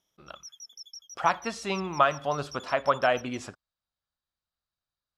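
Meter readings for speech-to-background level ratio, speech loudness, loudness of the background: 18.0 dB, -28.0 LUFS, -46.0 LUFS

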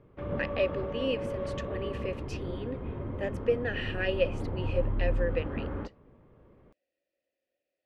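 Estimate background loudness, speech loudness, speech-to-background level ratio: -36.0 LUFS, -34.5 LUFS, 1.5 dB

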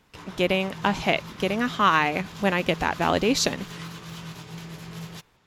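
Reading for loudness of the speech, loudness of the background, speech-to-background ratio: -24.0 LUFS, -39.5 LUFS, 15.5 dB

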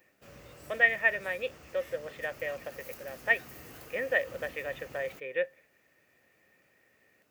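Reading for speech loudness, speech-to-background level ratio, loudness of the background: -31.5 LUFS, 18.0 dB, -49.5 LUFS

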